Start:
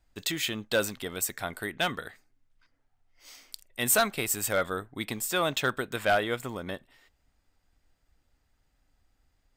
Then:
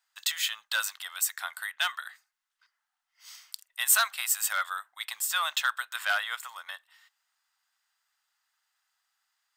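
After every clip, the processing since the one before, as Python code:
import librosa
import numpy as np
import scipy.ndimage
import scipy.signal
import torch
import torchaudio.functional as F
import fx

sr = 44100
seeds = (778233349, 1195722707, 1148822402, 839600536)

y = scipy.signal.sosfilt(scipy.signal.cheby2(4, 50, 390.0, 'highpass', fs=sr, output='sos'), x)
y = fx.peak_eq(y, sr, hz=2300.0, db=-6.5, octaves=0.24)
y = F.gain(torch.from_numpy(y), 2.5).numpy()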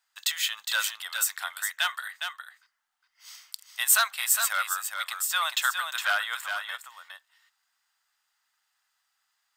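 y = x + 10.0 ** (-6.5 / 20.0) * np.pad(x, (int(411 * sr / 1000.0), 0))[:len(x)]
y = F.gain(torch.from_numpy(y), 1.5).numpy()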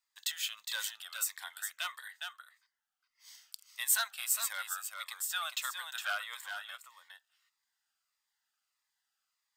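y = np.clip(x, -10.0 ** (-11.5 / 20.0), 10.0 ** (-11.5 / 20.0))
y = fx.notch_cascade(y, sr, direction='falling', hz=1.6)
y = F.gain(torch.from_numpy(y), -7.5).numpy()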